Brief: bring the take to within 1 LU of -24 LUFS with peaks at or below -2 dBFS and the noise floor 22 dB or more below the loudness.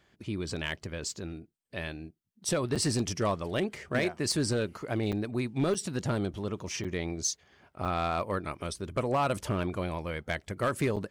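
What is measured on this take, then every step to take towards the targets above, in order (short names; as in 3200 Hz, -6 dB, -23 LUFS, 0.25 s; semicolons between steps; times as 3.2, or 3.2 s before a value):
clipped 0.6%; flat tops at -21.0 dBFS; dropouts 6; longest dropout 6.7 ms; loudness -32.0 LUFS; peak -21.0 dBFS; loudness target -24.0 LUFS
-> clip repair -21 dBFS; interpolate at 2.75/5.12/5.74/6.84/7.85/10.96, 6.7 ms; gain +8 dB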